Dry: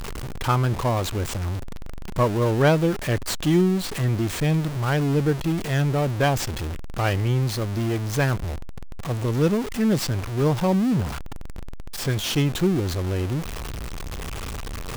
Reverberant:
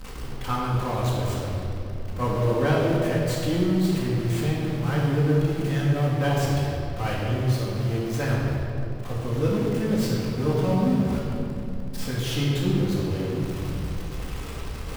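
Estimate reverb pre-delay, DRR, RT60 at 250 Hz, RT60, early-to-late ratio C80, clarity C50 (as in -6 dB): 4 ms, -11.0 dB, 3.7 s, 2.9 s, 0.5 dB, -1.0 dB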